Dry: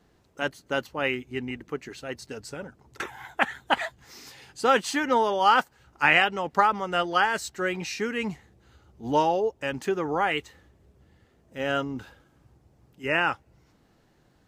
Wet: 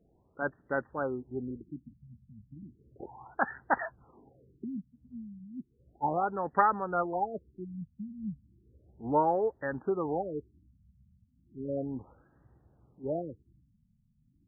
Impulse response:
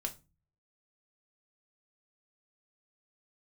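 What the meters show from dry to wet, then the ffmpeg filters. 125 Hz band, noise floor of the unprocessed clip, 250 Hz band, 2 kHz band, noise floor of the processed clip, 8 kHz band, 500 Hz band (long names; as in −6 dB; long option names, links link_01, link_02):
−3.5 dB, −63 dBFS, −4.5 dB, −13.5 dB, −69 dBFS, below −40 dB, −6.0 dB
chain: -af "afftfilt=real='re*lt(b*sr/1024,220*pow(2000/220,0.5+0.5*sin(2*PI*0.34*pts/sr)))':imag='im*lt(b*sr/1024,220*pow(2000/220,0.5+0.5*sin(2*PI*0.34*pts/sr)))':win_size=1024:overlap=0.75,volume=-3.5dB"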